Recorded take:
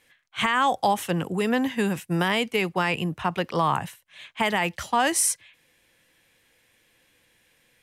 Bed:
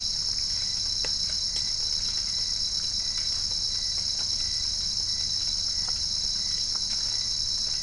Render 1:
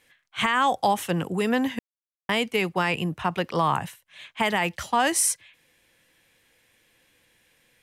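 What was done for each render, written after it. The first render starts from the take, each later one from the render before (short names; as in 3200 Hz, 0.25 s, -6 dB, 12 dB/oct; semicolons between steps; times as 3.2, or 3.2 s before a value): 1.79–2.29 mute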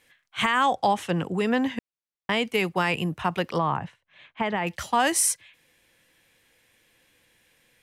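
0.66–2.45 air absorption 56 m; 3.58–4.67 tape spacing loss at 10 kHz 28 dB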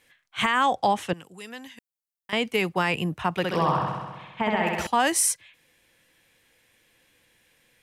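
1.13–2.33 pre-emphasis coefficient 0.9; 3.34–4.87 flutter echo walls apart 11.2 m, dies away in 1.3 s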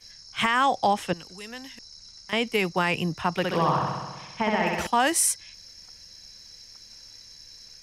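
add bed -19.5 dB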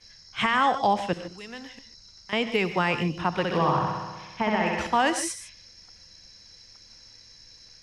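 air absorption 80 m; non-linear reverb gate 0.17 s rising, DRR 10 dB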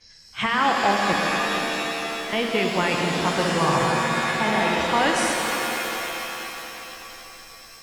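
darkening echo 0.24 s, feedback 67%, low-pass 1700 Hz, level -10.5 dB; shimmer reverb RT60 3.4 s, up +7 st, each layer -2 dB, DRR 2 dB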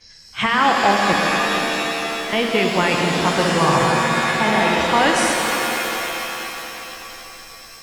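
gain +4.5 dB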